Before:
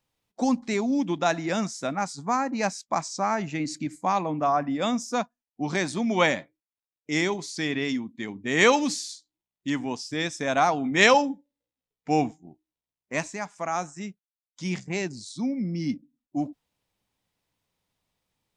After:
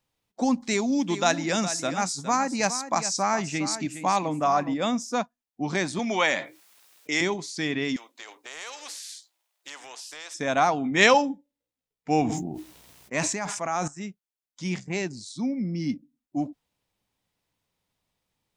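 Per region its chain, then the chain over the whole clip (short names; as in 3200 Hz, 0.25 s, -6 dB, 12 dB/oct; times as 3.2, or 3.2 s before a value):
0.6–4.74 high shelf 3500 Hz +10.5 dB + echo 0.413 s -11.5 dB
5.99–7.21 HPF 770 Hz 6 dB/oct + fast leveller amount 50%
7.96–10.34 inverse Chebyshev high-pass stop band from 210 Hz, stop band 50 dB + compressor 2.5:1, threshold -41 dBFS + spectral compressor 2:1
12.21–13.88 HPF 42 Hz + sustainer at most 33 dB/s
whole clip: dry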